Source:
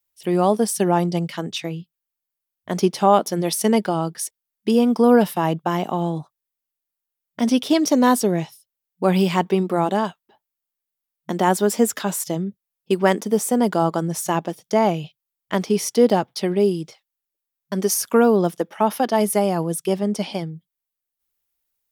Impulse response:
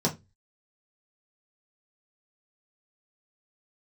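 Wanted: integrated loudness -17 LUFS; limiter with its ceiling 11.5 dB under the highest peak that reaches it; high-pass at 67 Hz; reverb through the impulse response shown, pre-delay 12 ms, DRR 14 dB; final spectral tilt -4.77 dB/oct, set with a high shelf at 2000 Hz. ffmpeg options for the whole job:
-filter_complex "[0:a]highpass=67,highshelf=f=2k:g=5,alimiter=limit=-13dB:level=0:latency=1,asplit=2[a][b];[1:a]atrim=start_sample=2205,adelay=12[c];[b][c]afir=irnorm=-1:irlink=0,volume=-24dB[d];[a][d]amix=inputs=2:normalize=0,volume=6dB"

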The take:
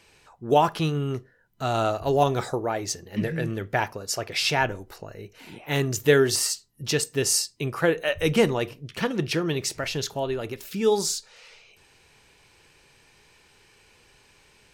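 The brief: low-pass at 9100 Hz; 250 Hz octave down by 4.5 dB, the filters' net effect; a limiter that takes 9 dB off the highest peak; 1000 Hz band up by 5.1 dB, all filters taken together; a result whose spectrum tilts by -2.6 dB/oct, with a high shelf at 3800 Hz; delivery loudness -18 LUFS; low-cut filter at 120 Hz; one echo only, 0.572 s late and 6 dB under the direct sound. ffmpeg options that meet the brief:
-af "highpass=120,lowpass=9.1k,equalizer=f=250:t=o:g=-6.5,equalizer=f=1k:t=o:g=7,highshelf=f=3.8k:g=5,alimiter=limit=-11.5dB:level=0:latency=1,aecho=1:1:572:0.501,volume=7dB"

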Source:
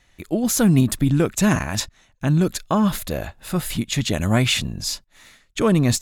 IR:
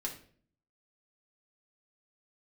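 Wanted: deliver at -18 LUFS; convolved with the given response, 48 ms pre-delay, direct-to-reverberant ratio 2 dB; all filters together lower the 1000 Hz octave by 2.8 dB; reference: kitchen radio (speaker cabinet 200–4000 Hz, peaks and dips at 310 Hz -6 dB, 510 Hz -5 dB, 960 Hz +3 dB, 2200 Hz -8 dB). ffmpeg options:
-filter_complex "[0:a]equalizer=f=1k:t=o:g=-4.5,asplit=2[a][b];[1:a]atrim=start_sample=2205,adelay=48[c];[b][c]afir=irnorm=-1:irlink=0,volume=-2.5dB[d];[a][d]amix=inputs=2:normalize=0,highpass=200,equalizer=f=310:t=q:w=4:g=-6,equalizer=f=510:t=q:w=4:g=-5,equalizer=f=960:t=q:w=4:g=3,equalizer=f=2.2k:t=q:w=4:g=-8,lowpass=f=4k:w=0.5412,lowpass=f=4k:w=1.3066,volume=5dB"

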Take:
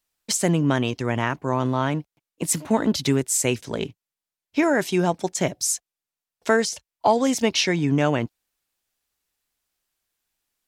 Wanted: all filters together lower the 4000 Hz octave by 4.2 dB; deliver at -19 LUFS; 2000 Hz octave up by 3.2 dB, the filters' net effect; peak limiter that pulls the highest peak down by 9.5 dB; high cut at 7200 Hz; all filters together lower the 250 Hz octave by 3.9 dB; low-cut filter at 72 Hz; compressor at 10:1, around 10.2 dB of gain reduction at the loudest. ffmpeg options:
-af "highpass=72,lowpass=7.2k,equalizer=f=250:t=o:g=-5,equalizer=f=2k:t=o:g=6,equalizer=f=4k:t=o:g=-8,acompressor=threshold=-23dB:ratio=10,volume=12dB,alimiter=limit=-6.5dB:level=0:latency=1"

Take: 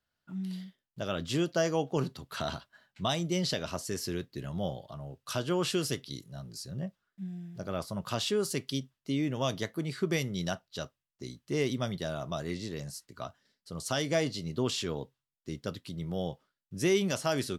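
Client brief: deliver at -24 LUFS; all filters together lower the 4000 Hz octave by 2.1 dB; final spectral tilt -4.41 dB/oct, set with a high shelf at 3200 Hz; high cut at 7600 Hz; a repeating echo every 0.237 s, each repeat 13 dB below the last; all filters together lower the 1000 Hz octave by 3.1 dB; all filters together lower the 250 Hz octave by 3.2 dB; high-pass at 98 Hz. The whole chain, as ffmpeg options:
-af "highpass=98,lowpass=7.6k,equalizer=f=250:t=o:g=-4.5,equalizer=f=1k:t=o:g=-4.5,highshelf=f=3.2k:g=4.5,equalizer=f=4k:t=o:g=-5.5,aecho=1:1:237|474|711:0.224|0.0493|0.0108,volume=12dB"

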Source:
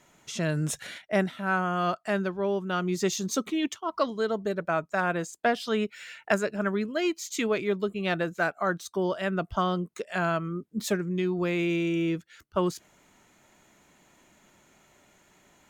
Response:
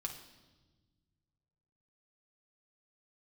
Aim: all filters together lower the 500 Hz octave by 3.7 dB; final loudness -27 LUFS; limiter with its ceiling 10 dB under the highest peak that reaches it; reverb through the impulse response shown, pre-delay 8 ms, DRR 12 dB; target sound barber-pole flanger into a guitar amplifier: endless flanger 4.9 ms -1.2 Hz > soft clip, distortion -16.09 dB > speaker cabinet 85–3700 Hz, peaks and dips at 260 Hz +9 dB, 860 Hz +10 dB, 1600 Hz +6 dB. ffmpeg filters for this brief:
-filter_complex "[0:a]equalizer=f=500:t=o:g=-7.5,alimiter=limit=-21dB:level=0:latency=1,asplit=2[a][b];[1:a]atrim=start_sample=2205,adelay=8[c];[b][c]afir=irnorm=-1:irlink=0,volume=-11dB[d];[a][d]amix=inputs=2:normalize=0,asplit=2[e][f];[f]adelay=4.9,afreqshift=-1.2[g];[e][g]amix=inputs=2:normalize=1,asoftclip=threshold=-27dB,highpass=85,equalizer=f=260:t=q:w=4:g=9,equalizer=f=860:t=q:w=4:g=10,equalizer=f=1.6k:t=q:w=4:g=6,lowpass=f=3.7k:w=0.5412,lowpass=f=3.7k:w=1.3066,volume=7.5dB"

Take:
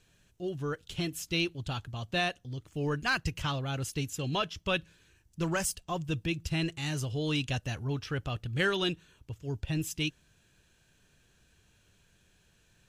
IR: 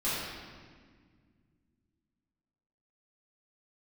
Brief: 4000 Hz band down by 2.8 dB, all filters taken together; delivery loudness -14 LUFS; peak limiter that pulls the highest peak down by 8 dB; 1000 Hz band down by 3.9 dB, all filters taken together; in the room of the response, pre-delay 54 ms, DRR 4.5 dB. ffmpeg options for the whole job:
-filter_complex "[0:a]equalizer=f=1k:t=o:g=-5.5,equalizer=f=4k:t=o:g=-3.5,alimiter=level_in=2.5dB:limit=-24dB:level=0:latency=1,volume=-2.5dB,asplit=2[a][b];[1:a]atrim=start_sample=2205,adelay=54[c];[b][c]afir=irnorm=-1:irlink=0,volume=-13.5dB[d];[a][d]amix=inputs=2:normalize=0,volume=21dB"

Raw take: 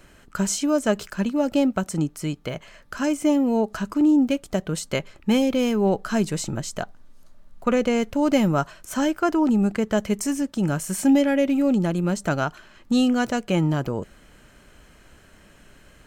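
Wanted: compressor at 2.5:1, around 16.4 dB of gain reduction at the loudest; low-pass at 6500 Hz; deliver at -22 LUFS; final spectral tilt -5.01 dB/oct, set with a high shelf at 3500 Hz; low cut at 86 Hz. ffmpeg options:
-af "highpass=86,lowpass=6.5k,highshelf=f=3.5k:g=4.5,acompressor=threshold=-41dB:ratio=2.5,volume=15.5dB"

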